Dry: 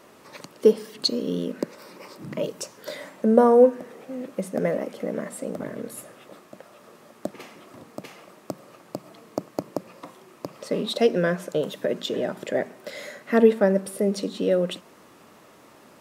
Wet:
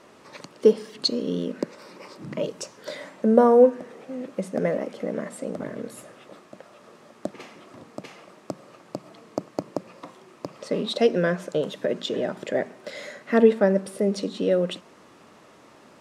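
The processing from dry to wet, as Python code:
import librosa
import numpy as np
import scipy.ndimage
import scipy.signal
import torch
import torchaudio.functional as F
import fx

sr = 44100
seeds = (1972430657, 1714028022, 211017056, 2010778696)

y = scipy.signal.sosfilt(scipy.signal.butter(2, 8100.0, 'lowpass', fs=sr, output='sos'), x)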